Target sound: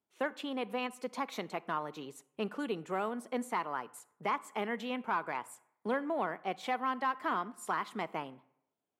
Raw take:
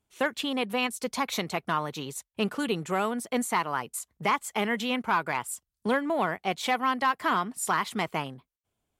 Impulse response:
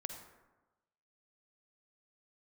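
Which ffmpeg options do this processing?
-filter_complex "[0:a]highpass=230,highshelf=frequency=2600:gain=-11.5,asplit=2[link_01][link_02];[1:a]atrim=start_sample=2205,asetrate=66150,aresample=44100[link_03];[link_02][link_03]afir=irnorm=-1:irlink=0,volume=-7dB[link_04];[link_01][link_04]amix=inputs=2:normalize=0,volume=-7dB"

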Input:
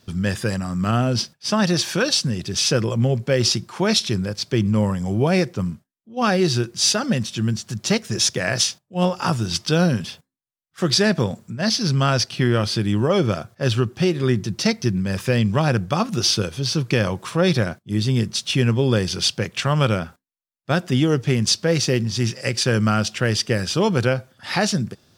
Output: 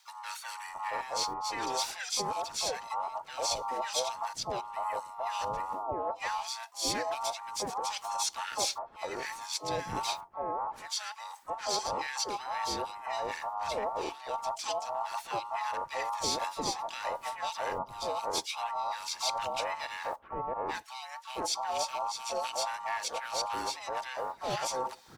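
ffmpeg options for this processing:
ffmpeg -i in.wav -filter_complex "[0:a]afftfilt=real='real(if(between(b,1,1008),(2*floor((b-1)/48)+1)*48-b,b),0)':imag='imag(if(between(b,1,1008),(2*floor((b-1)/48)+1)*48-b,b),0)*if(between(b,1,1008),-1,1)':win_size=2048:overlap=0.75,areverse,acompressor=threshold=-32dB:ratio=6,areverse,acrossover=split=1100[link_01][link_02];[link_01]adelay=670[link_03];[link_03][link_02]amix=inputs=2:normalize=0,asplit=3[link_04][link_05][link_06];[link_05]asetrate=55563,aresample=44100,atempo=0.793701,volume=-6dB[link_07];[link_06]asetrate=66075,aresample=44100,atempo=0.66742,volume=-14dB[link_08];[link_04][link_07][link_08]amix=inputs=3:normalize=0" out.wav

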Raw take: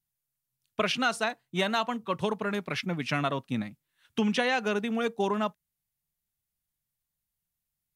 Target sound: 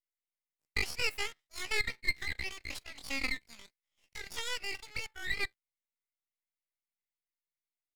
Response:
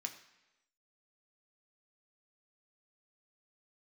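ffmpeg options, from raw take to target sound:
-af "highpass=frequency=1100:width_type=q:width=7.2,bandreject=frequency=3300:width=14,aeval=exprs='max(val(0),0)':channel_layout=same,asetrate=83250,aresample=44100,atempo=0.529732,volume=-8dB"

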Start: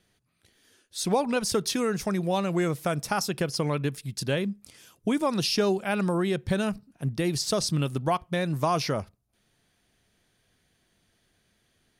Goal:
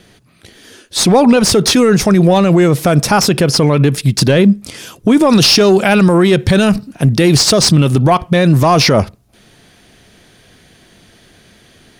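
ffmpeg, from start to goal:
ffmpeg -i in.wav -filter_complex "[0:a]equalizer=frequency=1100:width=0.37:gain=-11,asetnsamples=nb_out_samples=441:pad=0,asendcmd='5.3 lowpass f 2100;7.33 lowpass f 1300',asplit=2[link_01][link_02];[link_02]highpass=frequency=720:poles=1,volume=16dB,asoftclip=type=tanh:threshold=-16dB[link_03];[link_01][link_03]amix=inputs=2:normalize=0,lowpass=frequency=1100:poles=1,volume=-6dB,alimiter=level_in=27.5dB:limit=-1dB:release=50:level=0:latency=1,volume=-1dB" out.wav

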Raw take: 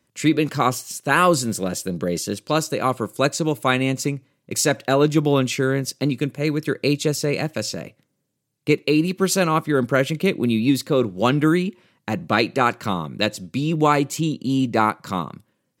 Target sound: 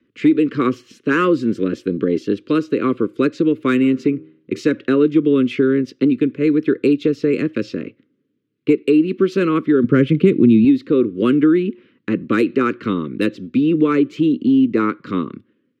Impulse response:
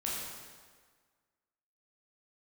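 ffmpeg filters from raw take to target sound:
-filter_complex "[0:a]firequalizer=gain_entry='entry(160,0);entry(260,14);entry(450,10);entry(730,-22);entry(1200,3);entry(3100,2);entry(4500,-9);entry(8100,-26);entry(12000,-28)':delay=0.05:min_phase=1,acrossover=split=340|660|1900[link_01][link_02][link_03][link_04];[link_04]asoftclip=type=tanh:threshold=-20dB[link_05];[link_01][link_02][link_03][link_05]amix=inputs=4:normalize=0,asplit=3[link_06][link_07][link_08];[link_06]afade=type=out:start_time=3.82:duration=0.02[link_09];[link_07]bandreject=frequency=78.51:width_type=h:width=4,bandreject=frequency=157.02:width_type=h:width=4,bandreject=frequency=235.53:width_type=h:width=4,bandreject=frequency=314.04:width_type=h:width=4,bandreject=frequency=392.55:width_type=h:width=4,bandreject=frequency=471.06:width_type=h:width=4,bandreject=frequency=549.57:width_type=h:width=4,bandreject=frequency=628.08:width_type=h:width=4,bandreject=frequency=706.59:width_type=h:width=4,bandreject=frequency=785.1:width_type=h:width=4,bandreject=frequency=863.61:width_type=h:width=4,bandreject=frequency=942.12:width_type=h:width=4,bandreject=frequency=1020.63:width_type=h:width=4,bandreject=frequency=1099.14:width_type=h:width=4,bandreject=frequency=1177.65:width_type=h:width=4,bandreject=frequency=1256.16:width_type=h:width=4,bandreject=frequency=1334.67:width_type=h:width=4,bandreject=frequency=1413.18:width_type=h:width=4,bandreject=frequency=1491.69:width_type=h:width=4,bandreject=frequency=1570.2:width_type=h:width=4,bandreject=frequency=1648.71:width_type=h:width=4,bandreject=frequency=1727.22:width_type=h:width=4,bandreject=frequency=1805.73:width_type=h:width=4,bandreject=frequency=1884.24:width_type=h:width=4,afade=type=in:start_time=3.82:duration=0.02,afade=type=out:start_time=4.58:duration=0.02[link_10];[link_08]afade=type=in:start_time=4.58:duration=0.02[link_11];[link_09][link_10][link_11]amix=inputs=3:normalize=0,acompressor=threshold=-12dB:ratio=2.5,asettb=1/sr,asplit=3[link_12][link_13][link_14];[link_12]atrim=end=9.844[link_15];[link_13]atrim=start=9.84:end=10.65,asetpts=PTS-STARTPTS,afade=type=in:duration=0.004:curve=qsin,afade=type=out:start_time=0.806:duration=0.004:curve=qsin,equalizer=frequency=140:width=1.2:gain=11.5[link_16];[link_14]atrim=start=10.646[link_17];[link_15][link_16]acrossfade=duration=0.004:curve1=hsin:curve2=qsin[link_18];[link_18][link_17]acrossfade=duration=0.004:curve1=qsin:curve2=hsin,volume=-1dB"

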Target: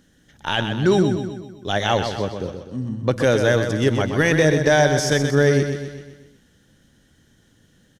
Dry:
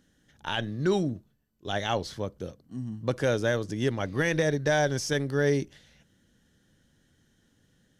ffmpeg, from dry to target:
ffmpeg -i in.wav -filter_complex "[0:a]asettb=1/sr,asplit=3[link_01][link_02][link_03];[link_01]atrim=end=2.044[link_04];[link_02]atrim=start=2.04:end=3.13,asetpts=PTS-STARTPTS,afade=type=in:duration=0.004:curve=qsin,afade=type=out:start_time=1.086:duration=0.004:curve=qsin,highshelf=frequency=8000:gain=-11.5[link_05];[link_03]atrim=start=3.126[link_06];[link_04][link_05]acrossfade=duration=0.004:curve1=hsin:curve2=qsin[link_07];[link_07][link_06]acrossfade=duration=0.004:curve1=qsin:curve2=hsin,aecho=1:1:127|254|381|508|635|762:0.422|0.215|0.11|0.0559|0.0285|0.0145,volume=8dB" out.wav

